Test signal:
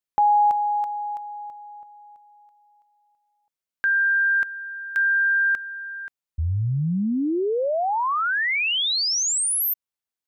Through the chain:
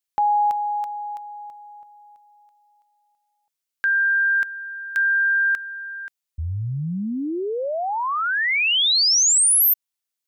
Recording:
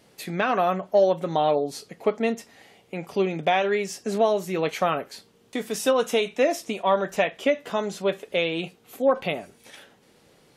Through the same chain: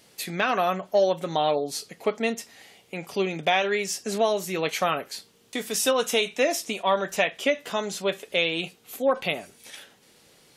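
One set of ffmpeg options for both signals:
-af "highshelf=f=2000:g=10,volume=0.708"

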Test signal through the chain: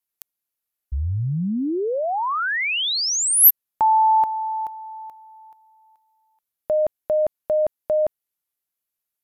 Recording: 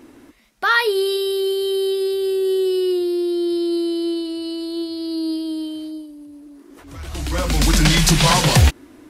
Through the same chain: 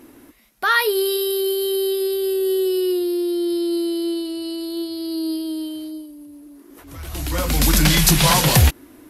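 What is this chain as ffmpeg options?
-af "equalizer=f=12000:w=2.3:g=15,volume=0.891"

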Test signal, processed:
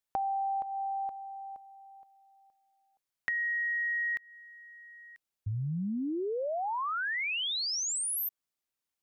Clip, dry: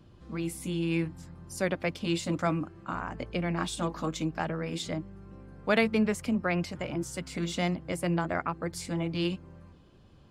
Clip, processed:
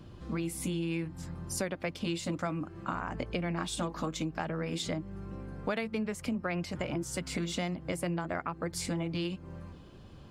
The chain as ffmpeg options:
-af "acompressor=threshold=0.0141:ratio=6,volume=2"

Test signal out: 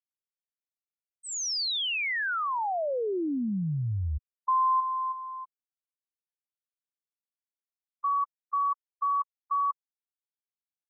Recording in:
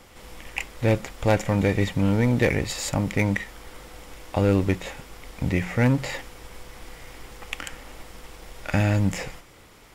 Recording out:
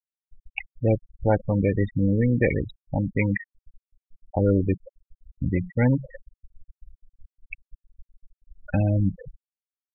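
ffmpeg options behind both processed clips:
-af "adynamicsmooth=sensitivity=7.5:basefreq=2400,afftfilt=real='re*gte(hypot(re,im),0.141)':imag='im*gte(hypot(re,im),0.141)':win_size=1024:overlap=0.75"

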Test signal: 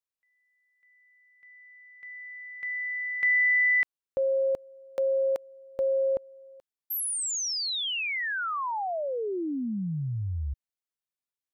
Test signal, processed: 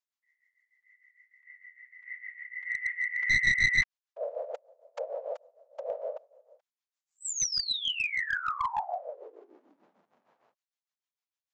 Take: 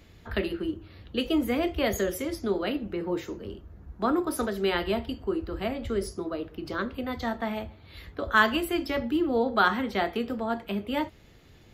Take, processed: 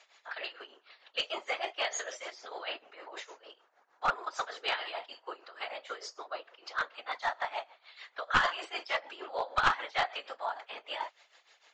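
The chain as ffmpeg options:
-af "tremolo=f=6.6:d=0.78,afftfilt=real='hypot(re,im)*cos(2*PI*random(0))':imag='hypot(re,im)*sin(2*PI*random(1))':win_size=512:overlap=0.75,highpass=f=720:w=0.5412,highpass=f=720:w=1.3066,aresample=16000,aeval=exprs='clip(val(0),-1,0.0224)':c=same,aresample=44100,volume=2.82"

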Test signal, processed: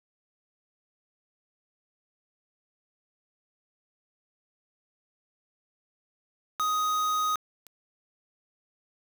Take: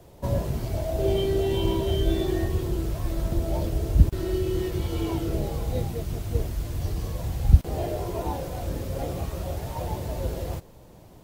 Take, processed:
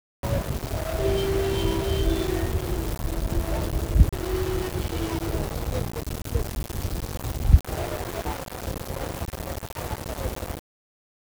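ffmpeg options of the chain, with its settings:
-af "aeval=exprs='val(0)*gte(abs(val(0)),0.0398)':c=same"

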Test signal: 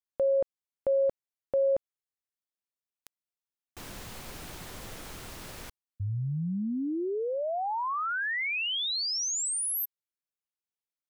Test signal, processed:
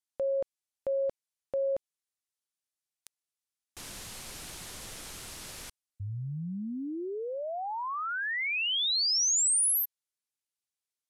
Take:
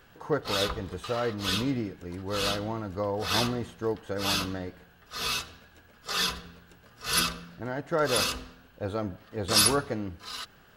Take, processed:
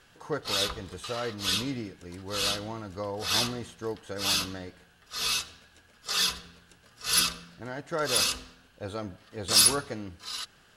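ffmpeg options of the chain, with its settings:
-filter_complex "[0:a]lowpass=f=12000:w=0.5412,lowpass=f=12000:w=1.3066,highshelf=f=2700:g=11,asplit=2[s0][s1];[s1]asoftclip=type=hard:threshold=0.15,volume=0.447[s2];[s0][s2]amix=inputs=2:normalize=0,volume=0.398"

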